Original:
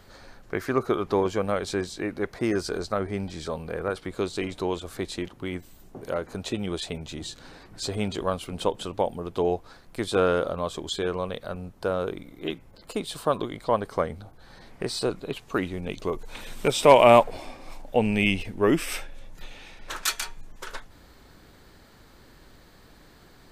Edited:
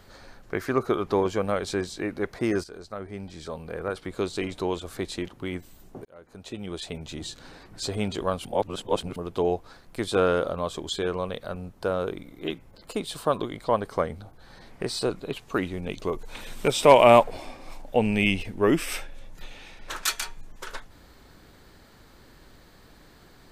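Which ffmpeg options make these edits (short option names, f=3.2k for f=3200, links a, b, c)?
-filter_complex "[0:a]asplit=5[a][b][c][d][e];[a]atrim=end=2.64,asetpts=PTS-STARTPTS,afade=t=out:st=2.636:d=0.004:c=hsin:silence=0.188365[f];[b]atrim=start=2.64:end=6.05,asetpts=PTS-STARTPTS,afade=t=in:d=1.61:silence=0.188365,afade=t=out:st=3.406:d=0.004:c=hsin[g];[c]atrim=start=6.05:end=8.452,asetpts=PTS-STARTPTS,afade=t=in:d=1.11[h];[d]atrim=start=8.448:end=9.162,asetpts=PTS-STARTPTS,areverse[i];[e]atrim=start=9.158[j];[f][g][h]concat=n=3:v=0:a=1[k];[k][i]acrossfade=d=0.004:c1=hsin:c2=hsin[l];[l][j]acrossfade=d=0.004:c1=hsin:c2=hsin"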